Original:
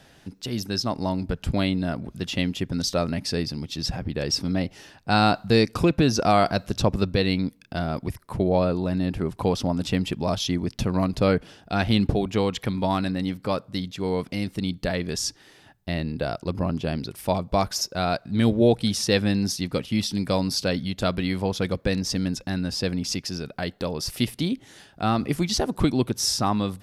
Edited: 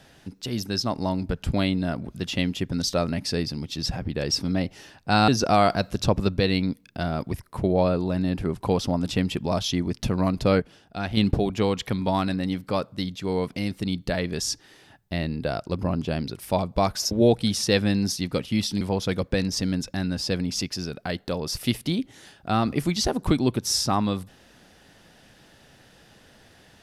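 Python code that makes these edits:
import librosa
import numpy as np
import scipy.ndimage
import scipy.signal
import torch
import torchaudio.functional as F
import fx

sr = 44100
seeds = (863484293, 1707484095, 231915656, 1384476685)

y = fx.edit(x, sr, fx.cut(start_s=5.28, length_s=0.76),
    fx.clip_gain(start_s=11.36, length_s=0.57, db=-6.0),
    fx.cut(start_s=17.87, length_s=0.64),
    fx.cut(start_s=20.21, length_s=1.13), tone=tone)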